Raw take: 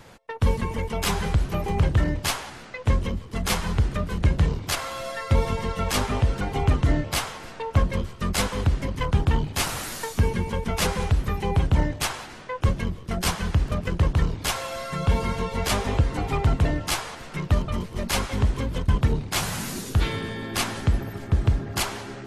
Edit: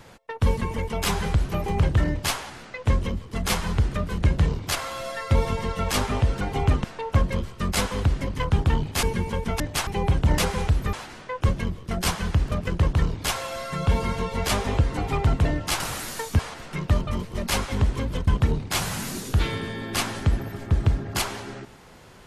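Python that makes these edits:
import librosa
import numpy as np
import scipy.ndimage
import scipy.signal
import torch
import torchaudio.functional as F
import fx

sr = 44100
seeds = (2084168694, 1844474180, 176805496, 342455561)

y = fx.edit(x, sr, fx.cut(start_s=6.84, length_s=0.61),
    fx.move(start_s=9.64, length_s=0.59, to_s=17.0),
    fx.swap(start_s=10.8, length_s=0.55, other_s=11.86, other_length_s=0.27), tone=tone)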